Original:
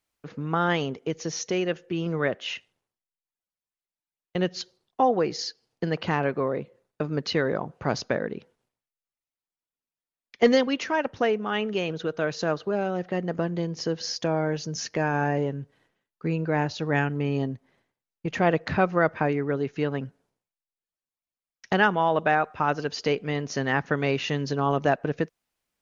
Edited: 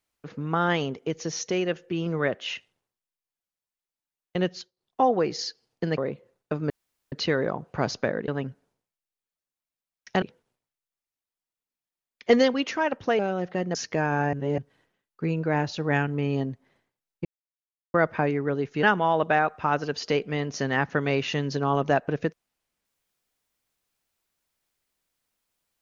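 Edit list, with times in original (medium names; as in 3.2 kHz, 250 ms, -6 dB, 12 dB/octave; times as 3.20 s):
4.47–5.00 s: dip -21 dB, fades 0.24 s
5.98–6.47 s: delete
7.19 s: insert room tone 0.42 s
11.32–12.76 s: delete
13.32–14.77 s: delete
15.35–15.60 s: reverse
18.27–18.96 s: mute
19.85–21.79 s: move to 8.35 s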